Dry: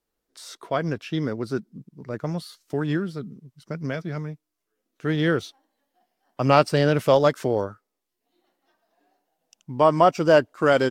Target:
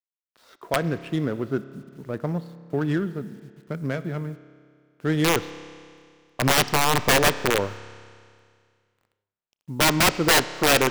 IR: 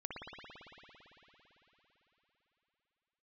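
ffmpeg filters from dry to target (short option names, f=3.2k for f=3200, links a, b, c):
-filter_complex "[0:a]adynamicsmooth=sensitivity=4.5:basefreq=1.2k,aeval=exprs='(mod(4.22*val(0)+1,2)-1)/4.22':c=same,acrusher=bits=9:mix=0:aa=0.000001,asplit=2[a][b];[1:a]atrim=start_sample=2205,asetrate=83790,aresample=44100[c];[b][c]afir=irnorm=-1:irlink=0,volume=-8dB[d];[a][d]amix=inputs=2:normalize=0"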